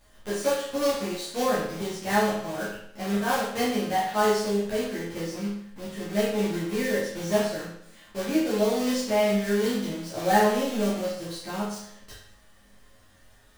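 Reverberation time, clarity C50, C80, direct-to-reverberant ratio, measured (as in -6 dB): 0.70 s, 1.5 dB, 5.5 dB, -10.0 dB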